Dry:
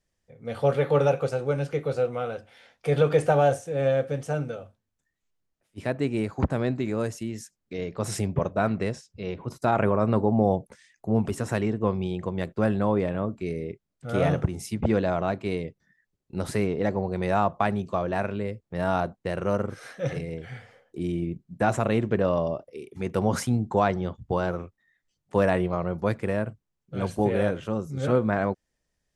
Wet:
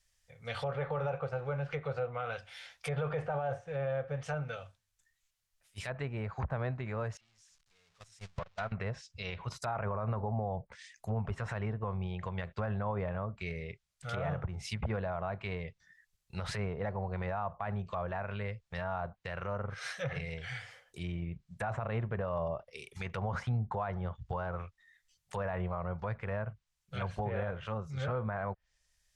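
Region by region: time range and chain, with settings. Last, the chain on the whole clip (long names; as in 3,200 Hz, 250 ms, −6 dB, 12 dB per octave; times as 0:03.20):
0:07.17–0:08.72: converter with a step at zero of −27.5 dBFS + Chebyshev low-pass filter 6,100 Hz + noise gate −22 dBFS, range −37 dB
whole clip: treble cut that deepens with the level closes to 1,100 Hz, closed at −23 dBFS; guitar amp tone stack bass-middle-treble 10-0-10; brickwall limiter −35 dBFS; level +9 dB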